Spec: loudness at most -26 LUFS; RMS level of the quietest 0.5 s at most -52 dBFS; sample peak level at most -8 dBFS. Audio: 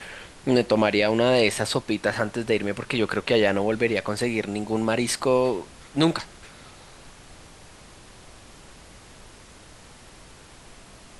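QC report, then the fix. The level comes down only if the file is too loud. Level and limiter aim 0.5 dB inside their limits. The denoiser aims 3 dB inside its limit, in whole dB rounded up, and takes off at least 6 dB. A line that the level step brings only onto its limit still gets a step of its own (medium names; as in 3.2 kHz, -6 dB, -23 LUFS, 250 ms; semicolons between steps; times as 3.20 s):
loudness -23.5 LUFS: fail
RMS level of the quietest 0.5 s -48 dBFS: fail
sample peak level -6.0 dBFS: fail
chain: noise reduction 6 dB, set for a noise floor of -48 dBFS; trim -3 dB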